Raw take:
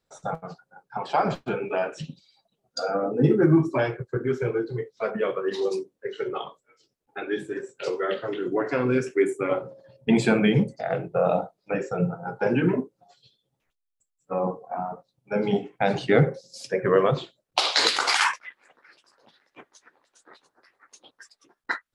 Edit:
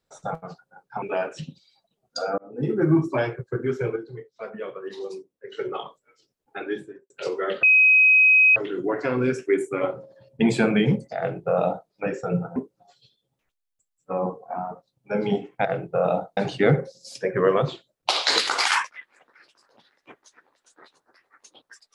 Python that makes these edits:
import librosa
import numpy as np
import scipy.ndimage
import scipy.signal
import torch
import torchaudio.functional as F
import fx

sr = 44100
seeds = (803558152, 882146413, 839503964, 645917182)

y = fx.studio_fade_out(x, sr, start_s=7.24, length_s=0.47)
y = fx.edit(y, sr, fx.cut(start_s=1.02, length_s=0.61),
    fx.fade_in_span(start_s=2.99, length_s=0.59),
    fx.clip_gain(start_s=4.57, length_s=1.56, db=-8.0),
    fx.insert_tone(at_s=8.24, length_s=0.93, hz=2530.0, db=-12.0),
    fx.duplicate(start_s=10.86, length_s=0.72, to_s=15.86),
    fx.cut(start_s=12.24, length_s=0.53), tone=tone)